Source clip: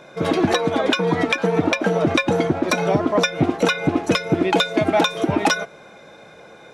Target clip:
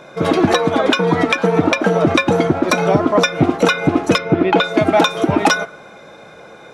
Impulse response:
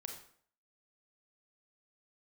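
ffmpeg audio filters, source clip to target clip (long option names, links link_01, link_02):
-filter_complex "[0:a]asettb=1/sr,asplit=3[link_01][link_02][link_03];[link_01]atrim=end=4.184[link_04];[link_02]atrim=start=4.18:end=4.64,asetpts=PTS-STARTPTS,afade=type=in:duration=0.004:curve=qsin,afade=type=out:start_time=0.456:duration=0.004:curve=qsin,lowpass=3200[link_05];[link_03]atrim=start=4.636[link_06];[link_04][link_05]acrossfade=duration=0.004:curve1=hsin:curve2=qsin[link_07];[link_07][link_06]acrossfade=duration=0.004:curve1=qsin:curve2=hsin,asplit=2[link_08][link_09];[link_09]equalizer=frequency=1300:width_type=o:width=0.63:gain=15[link_10];[1:a]atrim=start_sample=2205,lowpass=3200[link_11];[link_10][link_11]afir=irnorm=-1:irlink=0,volume=-14.5dB[link_12];[link_08][link_12]amix=inputs=2:normalize=0,volume=3.5dB"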